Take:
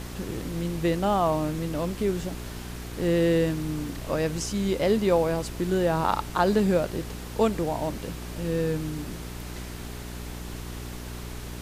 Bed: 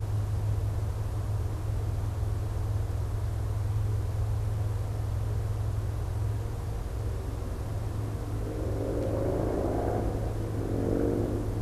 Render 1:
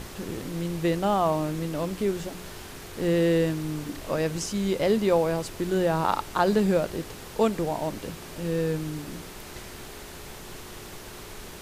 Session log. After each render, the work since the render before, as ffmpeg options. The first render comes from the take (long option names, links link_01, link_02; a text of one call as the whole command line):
ffmpeg -i in.wav -af "bandreject=frequency=60:width_type=h:width=4,bandreject=frequency=120:width_type=h:width=4,bandreject=frequency=180:width_type=h:width=4,bandreject=frequency=240:width_type=h:width=4,bandreject=frequency=300:width_type=h:width=4" out.wav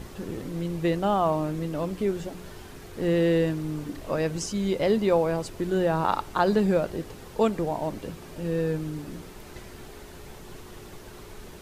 ffmpeg -i in.wav -af "afftdn=noise_reduction=7:noise_floor=-42" out.wav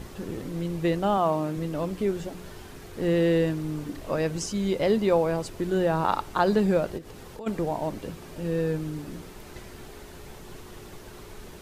ffmpeg -i in.wav -filter_complex "[0:a]asettb=1/sr,asplit=3[link_01][link_02][link_03];[link_01]atrim=end=1.174[link_04];[link_02]atrim=start=1.17:end=1.57,asetpts=PTS-STARTPTS,afade=type=in:duration=0.004:curve=qsin,afade=type=out:start_time=0.396:duration=0.004:curve=qsin,highpass=120[link_05];[link_03]atrim=start=1.566[link_06];[link_04][link_05]acrossfade=duration=0.004:curve1=hsin:curve2=qsin[link_07];[link_07][link_06]acrossfade=duration=0.004:curve1=qsin:curve2=hsin,asplit=3[link_08][link_09][link_10];[link_08]afade=type=out:start_time=6.97:duration=0.02[link_11];[link_09]acompressor=threshold=-38dB:ratio=5:attack=3.2:release=140:knee=1:detection=peak,afade=type=in:start_time=6.97:duration=0.02,afade=type=out:start_time=7.46:duration=0.02[link_12];[link_10]afade=type=in:start_time=7.46:duration=0.02[link_13];[link_11][link_12][link_13]amix=inputs=3:normalize=0" out.wav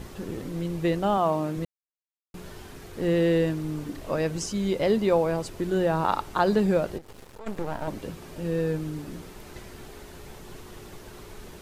ffmpeg -i in.wav -filter_complex "[0:a]asettb=1/sr,asplit=3[link_01][link_02][link_03];[link_01]atrim=end=6.984[link_04];[link_02]atrim=start=6.98:end=7.88,asetpts=PTS-STARTPTS,afade=type=in:duration=0.004:curve=qsin,afade=type=out:start_time=0.896:duration=0.004:curve=qsin,aeval=exprs='max(val(0),0)':channel_layout=same[link_05];[link_03]atrim=start=7.876[link_06];[link_04][link_05]acrossfade=duration=0.004:curve1=hsin:curve2=qsin[link_07];[link_07][link_06]acrossfade=duration=0.004:curve1=qsin:curve2=hsin,asplit=3[link_08][link_09][link_10];[link_08]atrim=end=1.65,asetpts=PTS-STARTPTS,afade=type=out:start_time=1.646:duration=0.004:curve=hsin[link_11];[link_09]atrim=start=1.65:end=2.34,asetpts=PTS-STARTPTS,volume=0[link_12];[link_10]atrim=start=2.34,asetpts=PTS-STARTPTS,afade=type=in:duration=0.004:curve=hsin[link_13];[link_11][link_12][link_13]concat=n=3:v=0:a=1" out.wav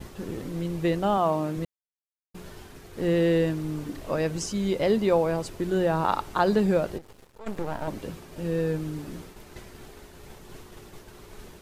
ffmpeg -i in.wav -af "agate=range=-33dB:threshold=-39dB:ratio=3:detection=peak" out.wav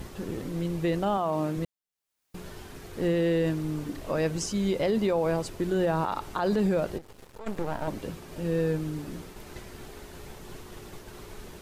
ffmpeg -i in.wav -af "acompressor=mode=upward:threshold=-37dB:ratio=2.5,alimiter=limit=-18dB:level=0:latency=1:release=35" out.wav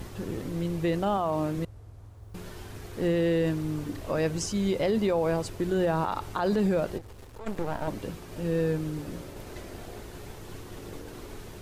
ffmpeg -i in.wav -i bed.wav -filter_complex "[1:a]volume=-17dB[link_01];[0:a][link_01]amix=inputs=2:normalize=0" out.wav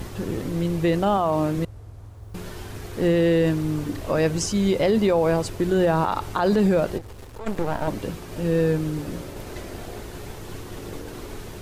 ffmpeg -i in.wav -af "volume=6dB" out.wav